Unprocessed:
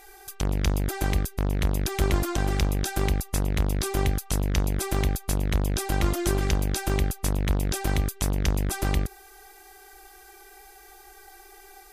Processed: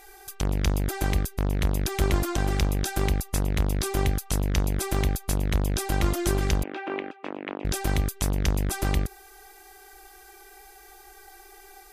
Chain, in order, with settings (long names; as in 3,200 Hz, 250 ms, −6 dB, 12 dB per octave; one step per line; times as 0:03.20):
0:06.63–0:07.65: Chebyshev band-pass filter 280–2,700 Hz, order 3